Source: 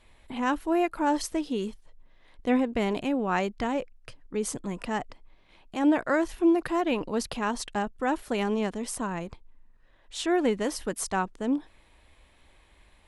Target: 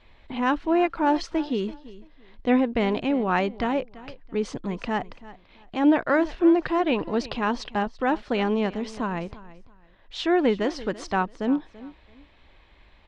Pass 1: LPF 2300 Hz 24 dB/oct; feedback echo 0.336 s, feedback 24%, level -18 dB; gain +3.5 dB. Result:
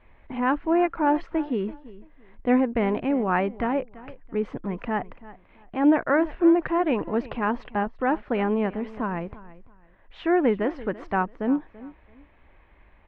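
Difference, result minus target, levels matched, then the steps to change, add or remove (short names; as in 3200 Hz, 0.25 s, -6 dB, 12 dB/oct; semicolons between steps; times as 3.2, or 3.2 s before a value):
4000 Hz band -11.0 dB
change: LPF 4800 Hz 24 dB/oct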